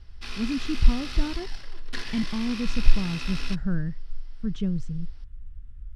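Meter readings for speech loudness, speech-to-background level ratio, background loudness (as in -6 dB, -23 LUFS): -30.0 LUFS, 7.0 dB, -37.0 LUFS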